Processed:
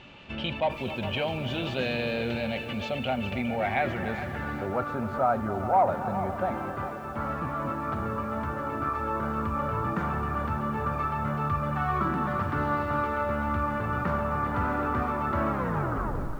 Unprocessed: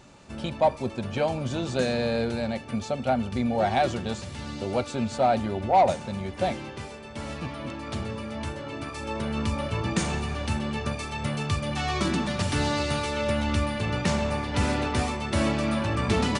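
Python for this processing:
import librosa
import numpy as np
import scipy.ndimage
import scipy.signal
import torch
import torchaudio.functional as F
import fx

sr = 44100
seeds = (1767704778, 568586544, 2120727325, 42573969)

p1 = fx.tape_stop_end(x, sr, length_s=0.89)
p2 = fx.over_compress(p1, sr, threshold_db=-33.0, ratio=-1.0)
p3 = p1 + (p2 * 10.0 ** (-3.0 / 20.0))
p4 = fx.filter_sweep_lowpass(p3, sr, from_hz=2900.0, to_hz=1300.0, start_s=3.07, end_s=4.9, q=4.1)
p5 = p4 + fx.echo_wet_lowpass(p4, sr, ms=267, feedback_pct=60, hz=1400.0, wet_db=-14.0, dry=0)
p6 = fx.echo_crushed(p5, sr, ms=410, feedback_pct=35, bits=7, wet_db=-11.5)
y = p6 * 10.0 ** (-6.5 / 20.0)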